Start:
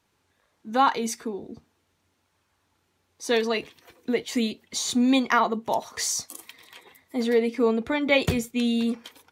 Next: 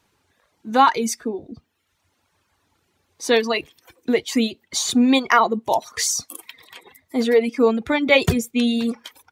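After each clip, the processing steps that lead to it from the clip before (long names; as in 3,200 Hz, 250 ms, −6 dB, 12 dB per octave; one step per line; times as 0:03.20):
reverb reduction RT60 0.84 s
level +6 dB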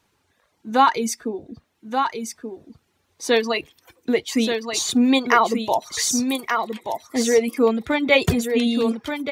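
single-tap delay 1,180 ms −6 dB
level −1 dB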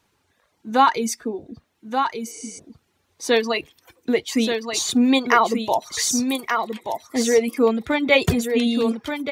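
healed spectral selection 0:02.29–0:02.56, 290–11,000 Hz before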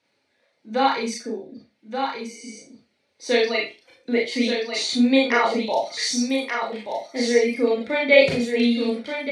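loudspeaker in its box 150–8,700 Hz, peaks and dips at 550 Hz +9 dB, 1,100 Hz −7 dB, 2,200 Hz +9 dB, 4,300 Hz +8 dB, 7,100 Hz −8 dB
four-comb reverb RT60 0.3 s, combs from 26 ms, DRR −2.5 dB
level −8 dB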